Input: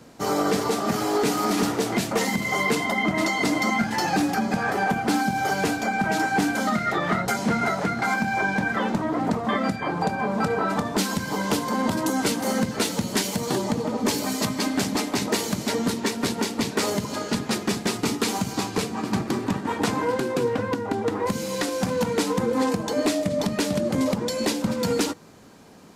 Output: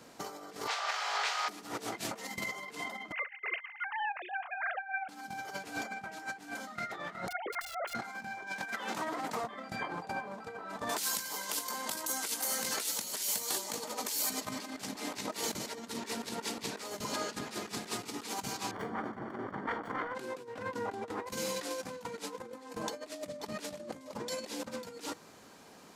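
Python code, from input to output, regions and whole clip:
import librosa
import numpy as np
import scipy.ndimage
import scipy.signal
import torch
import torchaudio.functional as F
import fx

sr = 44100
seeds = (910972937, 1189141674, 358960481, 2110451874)

y = fx.spec_flatten(x, sr, power=0.69, at=(0.66, 1.48), fade=0.02)
y = fx.bessel_highpass(y, sr, hz=1000.0, order=6, at=(0.66, 1.48), fade=0.02)
y = fx.air_absorb(y, sr, metres=160.0, at=(0.66, 1.48), fade=0.02)
y = fx.chain(y, sr, fx.sine_speech(),
    fx.highpass(hz=840.0, slope=12), at=(3.12, 5.09))
y = fx.chain(y, sr, fx.sine_speech(),
    fx.overflow_wrap(gain_db=17.5), at=(7.28, 7.95))
y = fx.chain(y, sr, fx.highpass(hz=100.0, slope=12),
    fx.tilt_eq(slope=2.5), at=(8.47, 9.44))
y = fx.chain(y, sr, fx.riaa(side='recording'),
    fx.over_compress(threshold_db=-28.0, ratio=-1.0), at=(10.89, 14.3))
y = fx.chain(y, sr, fx.self_delay(depth_ms=0.57),
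    fx.savgol(points=41), at=(18.71, 20.15))
y = fx.over_compress(y, sr, threshold_db=-29.0, ratio=-0.5)
y = fx.low_shelf(y, sr, hz=320.0, db=-11.5)
y = F.gain(torch.from_numpy(y), -6.5).numpy()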